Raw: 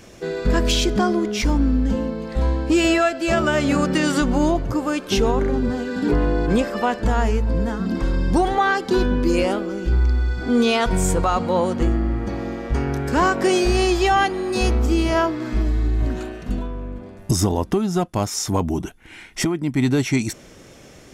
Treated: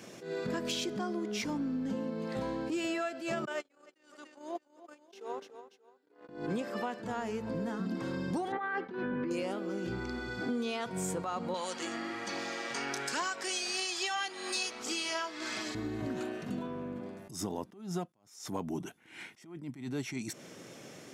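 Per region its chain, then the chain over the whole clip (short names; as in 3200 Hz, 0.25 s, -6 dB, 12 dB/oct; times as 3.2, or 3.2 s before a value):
3.45–6.29 HPF 350 Hz 24 dB/oct + gate -22 dBFS, range -43 dB + feedback echo 0.29 s, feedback 28%, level -22 dB
8.52–9.31 expander -28 dBFS + synth low-pass 1900 Hz, resonance Q 1.9 + negative-ratio compressor -21 dBFS
11.54–15.75 weighting filter ITU-R 468 + phaser 1.2 Hz, delay 4.5 ms, feedback 29%
whole clip: HPF 130 Hz 24 dB/oct; compressor 6:1, threshold -28 dBFS; attack slew limiter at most 110 dB/s; gain -4 dB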